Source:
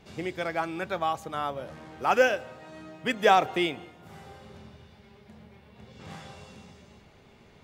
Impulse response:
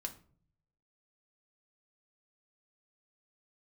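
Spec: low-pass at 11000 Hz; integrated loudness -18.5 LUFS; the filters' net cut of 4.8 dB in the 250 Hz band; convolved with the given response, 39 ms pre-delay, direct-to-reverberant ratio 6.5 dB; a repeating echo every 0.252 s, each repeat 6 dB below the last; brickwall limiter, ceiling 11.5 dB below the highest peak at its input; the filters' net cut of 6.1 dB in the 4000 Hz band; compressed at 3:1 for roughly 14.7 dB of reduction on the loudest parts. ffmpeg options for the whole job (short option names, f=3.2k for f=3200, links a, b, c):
-filter_complex "[0:a]lowpass=11k,equalizer=f=250:t=o:g=-7.5,equalizer=f=4k:t=o:g=-8.5,acompressor=threshold=-37dB:ratio=3,alimiter=level_in=10.5dB:limit=-24dB:level=0:latency=1,volume=-10.5dB,aecho=1:1:252|504|756|1008|1260|1512:0.501|0.251|0.125|0.0626|0.0313|0.0157,asplit=2[a][b];[1:a]atrim=start_sample=2205,adelay=39[c];[b][c]afir=irnorm=-1:irlink=0,volume=-5dB[d];[a][d]amix=inputs=2:normalize=0,volume=27dB"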